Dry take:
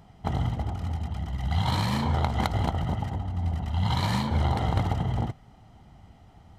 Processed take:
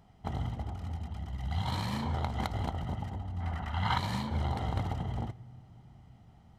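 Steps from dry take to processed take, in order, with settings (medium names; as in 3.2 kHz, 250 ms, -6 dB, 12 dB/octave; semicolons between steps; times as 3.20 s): 3.40–3.98 s: peaking EQ 1.5 kHz +15 dB 1.7 oct; on a send: reverberation RT60 3.5 s, pre-delay 3 ms, DRR 20.5 dB; on the sum: trim -7.5 dB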